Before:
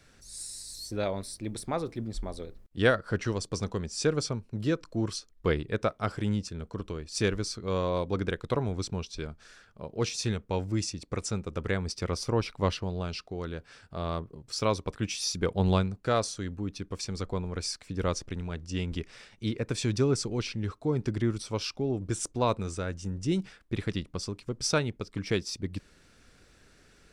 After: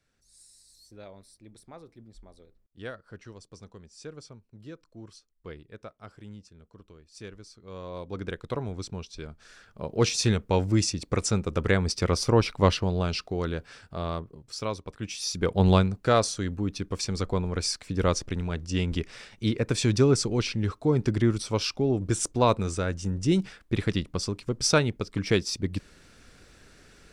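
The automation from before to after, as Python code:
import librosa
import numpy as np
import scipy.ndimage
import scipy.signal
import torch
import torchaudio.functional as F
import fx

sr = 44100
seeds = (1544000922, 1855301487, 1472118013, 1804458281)

y = fx.gain(x, sr, db=fx.line((7.53, -15.5), (8.32, -3.0), (9.23, -3.0), (9.9, 6.5), (13.48, 6.5), (14.87, -6.0), (15.63, 5.0)))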